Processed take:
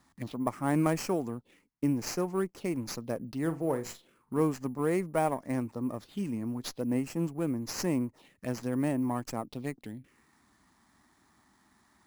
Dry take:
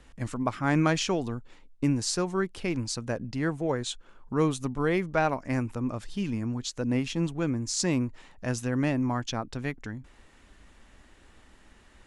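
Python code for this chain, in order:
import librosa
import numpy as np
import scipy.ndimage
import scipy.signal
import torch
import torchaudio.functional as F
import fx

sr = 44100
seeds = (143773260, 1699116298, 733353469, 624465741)

y = np.repeat(x[::4], 4)[:len(x)]
y = scipy.signal.sosfilt(scipy.signal.butter(2, 160.0, 'highpass', fs=sr, output='sos'), y)
y = fx.peak_eq(y, sr, hz=1500.0, db=-7.5, octaves=0.36)
y = fx.room_flutter(y, sr, wall_m=7.4, rt60_s=0.23, at=(3.41, 4.42))
y = fx.env_phaser(y, sr, low_hz=470.0, high_hz=3600.0, full_db=-29.0)
y = fx.running_max(y, sr, window=3)
y = y * 10.0 ** (-1.5 / 20.0)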